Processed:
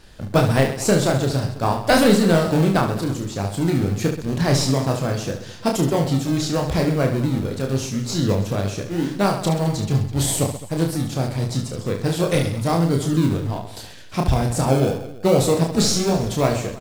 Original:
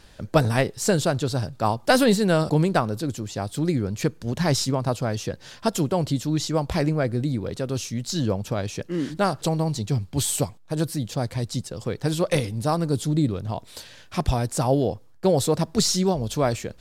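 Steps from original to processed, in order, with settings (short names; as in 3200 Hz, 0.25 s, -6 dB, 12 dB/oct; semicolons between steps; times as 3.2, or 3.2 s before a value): in parallel at -9 dB: decimation with a swept rate 36×, swing 60% 0.83 Hz; on the sum: reverse bouncing-ball echo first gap 30 ms, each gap 1.4×, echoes 5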